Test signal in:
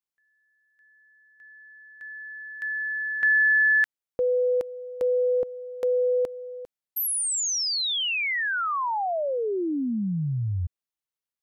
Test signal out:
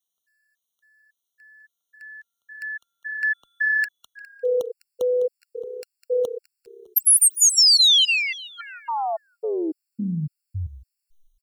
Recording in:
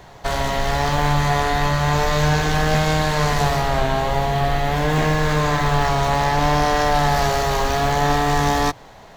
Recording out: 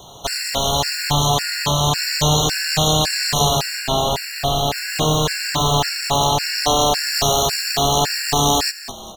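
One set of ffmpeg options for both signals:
ffmpeg -i in.wav -filter_complex "[0:a]lowshelf=frequency=68:gain=-9.5,aexciter=amount=5.9:drive=7.5:freq=2900,highshelf=frequency=3100:gain=-10.5,asplit=5[link_01][link_02][link_03][link_04][link_05];[link_02]adelay=204,afreqshift=-33,volume=-13dB[link_06];[link_03]adelay=408,afreqshift=-66,volume=-21dB[link_07];[link_04]adelay=612,afreqshift=-99,volume=-28.9dB[link_08];[link_05]adelay=816,afreqshift=-132,volume=-36.9dB[link_09];[link_01][link_06][link_07][link_08][link_09]amix=inputs=5:normalize=0,afftfilt=real='re*gt(sin(2*PI*1.8*pts/sr)*(1-2*mod(floor(b*sr/1024/1400),2)),0)':imag='im*gt(sin(2*PI*1.8*pts/sr)*(1-2*mod(floor(b*sr/1024/1400),2)),0)':win_size=1024:overlap=0.75,volume=2.5dB" out.wav

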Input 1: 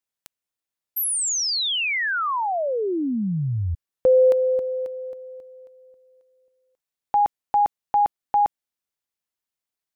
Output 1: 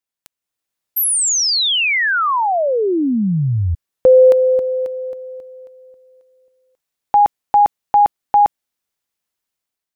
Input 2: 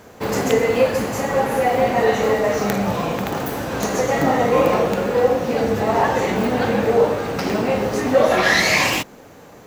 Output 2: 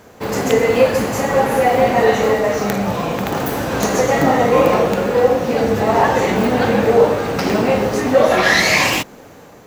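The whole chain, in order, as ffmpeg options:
ffmpeg -i in.wav -af "dynaudnorm=framelen=140:gausssize=7:maxgain=7.5dB" out.wav

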